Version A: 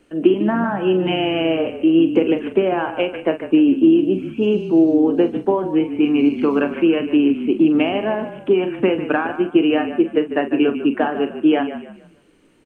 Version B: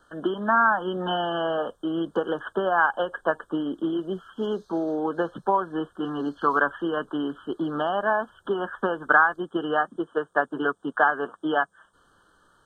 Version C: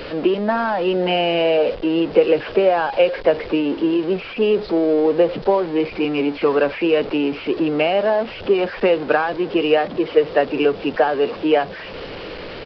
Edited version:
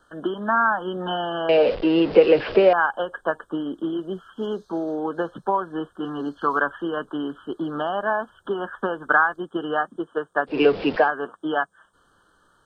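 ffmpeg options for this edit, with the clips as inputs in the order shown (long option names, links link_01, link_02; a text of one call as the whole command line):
ffmpeg -i take0.wav -i take1.wav -i take2.wav -filter_complex "[2:a]asplit=2[link_01][link_02];[1:a]asplit=3[link_03][link_04][link_05];[link_03]atrim=end=1.492[link_06];[link_01]atrim=start=1.488:end=2.732[link_07];[link_04]atrim=start=2.728:end=10.62[link_08];[link_02]atrim=start=10.46:end=11.11[link_09];[link_05]atrim=start=10.95[link_10];[link_06][link_07]acrossfade=duration=0.004:curve1=hsin:curve2=hsin[link_11];[link_11][link_08]acrossfade=duration=0.004:curve1=hsin:curve2=hsin[link_12];[link_12][link_09]acrossfade=duration=0.16:curve1=tri:curve2=tri[link_13];[link_13][link_10]acrossfade=duration=0.16:curve1=tri:curve2=tri" out.wav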